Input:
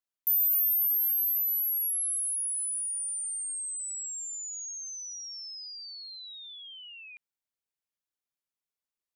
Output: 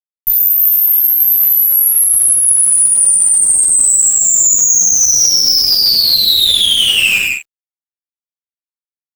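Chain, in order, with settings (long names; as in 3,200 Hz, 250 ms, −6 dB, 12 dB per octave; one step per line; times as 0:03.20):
reverb whose tail is shaped and stops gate 390 ms falling, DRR −6.5 dB
fuzz pedal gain 46 dB, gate −50 dBFS
string-ensemble chorus
level +7.5 dB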